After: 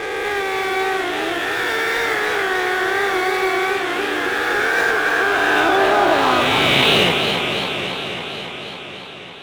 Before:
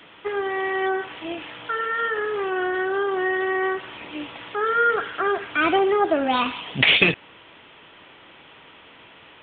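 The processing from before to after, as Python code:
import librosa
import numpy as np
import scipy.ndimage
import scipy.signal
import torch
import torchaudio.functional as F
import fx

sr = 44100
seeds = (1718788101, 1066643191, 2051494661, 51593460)

p1 = fx.spec_swells(x, sr, rise_s=2.63)
p2 = fx.dynamic_eq(p1, sr, hz=2500.0, q=1.4, threshold_db=-26.0, ratio=4.0, max_db=-4)
p3 = fx.fuzz(p2, sr, gain_db=30.0, gate_db=-35.0)
p4 = p2 + F.gain(torch.from_numpy(p3), -9.5).numpy()
p5 = fx.formant_shift(p4, sr, semitones=2)
p6 = fx.echo_warbled(p5, sr, ms=276, feedback_pct=76, rate_hz=2.8, cents=113, wet_db=-6)
y = F.gain(torch.from_numpy(p6), -3.5).numpy()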